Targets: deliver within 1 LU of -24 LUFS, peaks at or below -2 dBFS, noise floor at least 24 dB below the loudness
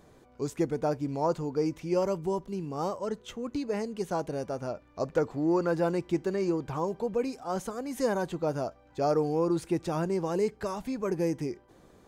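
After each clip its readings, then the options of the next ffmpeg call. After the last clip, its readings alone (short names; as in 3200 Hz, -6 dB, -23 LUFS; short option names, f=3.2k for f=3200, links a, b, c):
loudness -31.0 LUFS; peak -16.5 dBFS; loudness target -24.0 LUFS
-> -af "volume=7dB"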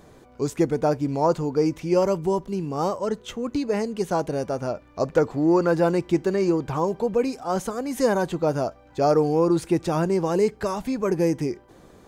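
loudness -24.0 LUFS; peak -9.5 dBFS; noise floor -52 dBFS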